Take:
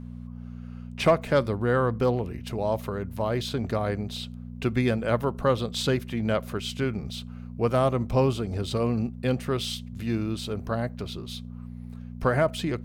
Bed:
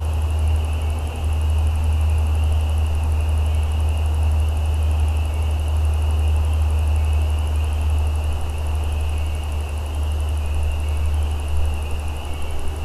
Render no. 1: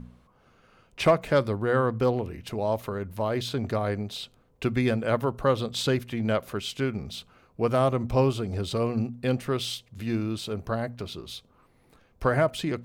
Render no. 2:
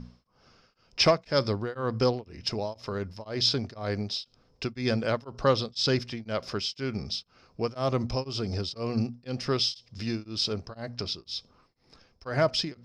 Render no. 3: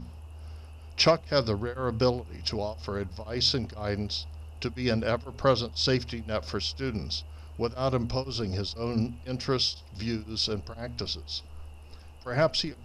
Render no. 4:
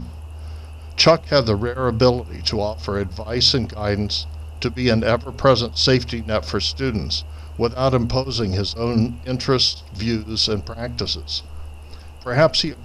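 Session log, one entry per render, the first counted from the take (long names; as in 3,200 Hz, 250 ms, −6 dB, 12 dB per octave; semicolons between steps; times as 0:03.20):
hum removal 60 Hz, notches 4
low-pass with resonance 5,200 Hz, resonance Q 15; tremolo along a rectified sine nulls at 2 Hz
mix in bed −24 dB
level +9.5 dB; brickwall limiter −3 dBFS, peak gain reduction 2 dB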